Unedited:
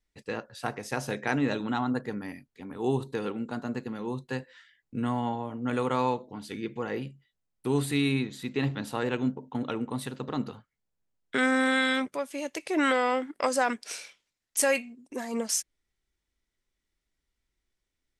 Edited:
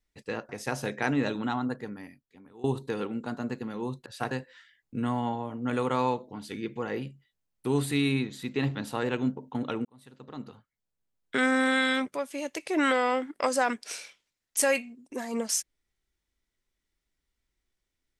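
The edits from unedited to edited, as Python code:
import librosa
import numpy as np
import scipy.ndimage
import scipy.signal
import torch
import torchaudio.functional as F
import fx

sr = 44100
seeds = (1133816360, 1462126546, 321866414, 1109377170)

y = fx.edit(x, sr, fx.move(start_s=0.49, length_s=0.25, to_s=4.31),
    fx.fade_out_to(start_s=1.62, length_s=1.27, floor_db=-20.5),
    fx.fade_in_span(start_s=9.85, length_s=1.51), tone=tone)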